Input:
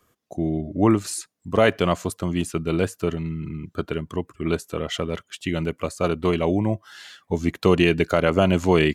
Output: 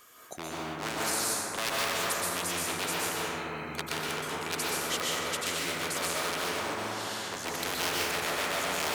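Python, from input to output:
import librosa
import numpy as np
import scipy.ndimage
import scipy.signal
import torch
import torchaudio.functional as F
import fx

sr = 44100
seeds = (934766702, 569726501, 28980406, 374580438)

y = np.minimum(x, 2.0 * 10.0 ** (-17.0 / 20.0) - x)
y = fx.rider(y, sr, range_db=3, speed_s=0.5)
y = fx.highpass(y, sr, hz=1500.0, slope=6)
y = fx.rev_plate(y, sr, seeds[0], rt60_s=2.3, hf_ratio=0.25, predelay_ms=110, drr_db=-8.0)
y = fx.spectral_comp(y, sr, ratio=2.0)
y = F.gain(torch.from_numpy(y), -2.0).numpy()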